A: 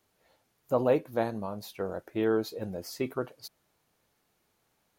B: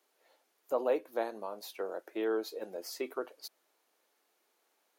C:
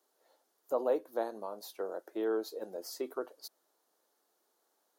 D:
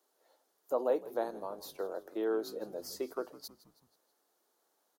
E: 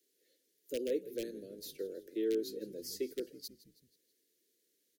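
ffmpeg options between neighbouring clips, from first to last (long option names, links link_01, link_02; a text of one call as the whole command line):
ffmpeg -i in.wav -filter_complex "[0:a]highpass=frequency=320:width=0.5412,highpass=frequency=320:width=1.3066,asplit=2[link_01][link_02];[link_02]acompressor=threshold=-36dB:ratio=6,volume=-2dB[link_03];[link_01][link_03]amix=inputs=2:normalize=0,volume=-6dB" out.wav
ffmpeg -i in.wav -af "equalizer=frequency=2400:width_type=o:width=0.8:gain=-12" out.wav
ffmpeg -i in.wav -filter_complex "[0:a]asplit=5[link_01][link_02][link_03][link_04][link_05];[link_02]adelay=161,afreqshift=-63,volume=-18dB[link_06];[link_03]adelay=322,afreqshift=-126,volume=-23.8dB[link_07];[link_04]adelay=483,afreqshift=-189,volume=-29.7dB[link_08];[link_05]adelay=644,afreqshift=-252,volume=-35.5dB[link_09];[link_01][link_06][link_07][link_08][link_09]amix=inputs=5:normalize=0" out.wav
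ffmpeg -i in.wav -filter_complex "[0:a]acrossover=split=300|950|4800[link_01][link_02][link_03][link_04];[link_03]aeval=exprs='(mod(66.8*val(0)+1,2)-1)/66.8':channel_layout=same[link_05];[link_01][link_02][link_05][link_04]amix=inputs=4:normalize=0,asuperstop=centerf=940:order=8:qfactor=0.66,volume=1dB" out.wav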